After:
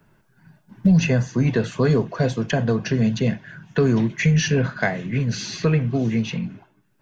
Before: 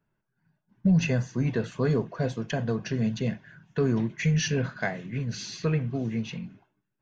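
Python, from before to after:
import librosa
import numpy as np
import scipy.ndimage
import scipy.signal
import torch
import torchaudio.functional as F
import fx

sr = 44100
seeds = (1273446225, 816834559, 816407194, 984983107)

y = fx.band_squash(x, sr, depth_pct=40)
y = F.gain(torch.from_numpy(y), 7.0).numpy()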